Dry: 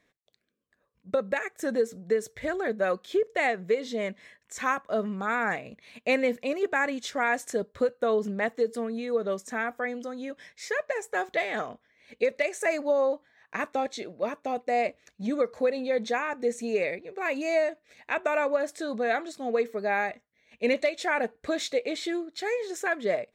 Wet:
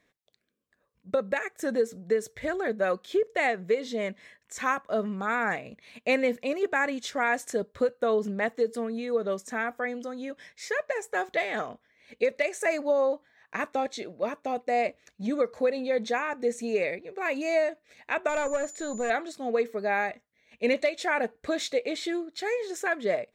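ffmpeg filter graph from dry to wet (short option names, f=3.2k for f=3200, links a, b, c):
-filter_complex "[0:a]asettb=1/sr,asplit=3[a][b][c];[a]atrim=end=18.294[d];[b]atrim=start=18.29:end=19.1,asetpts=PTS-STARTPTS,afade=t=in:d=0.004:c=qsin,afade=t=out:st=0.806:d=0.004:c=qsin,aeval=exprs='val(0)+0.0141*sin(2*PI*7000*n/s)':c=same,highshelf=f=6.8k:g=-8.5,aeval=exprs='(tanh(10*val(0)+0.3)-tanh(0.3))/10':c=same[e];[c]atrim=start=19.096[f];[d][e]acrossfade=d=0.004:c1=hsin:c2=qsin[g];[g][f]acrossfade=d=0.004:c1=qsin:c2=hsin"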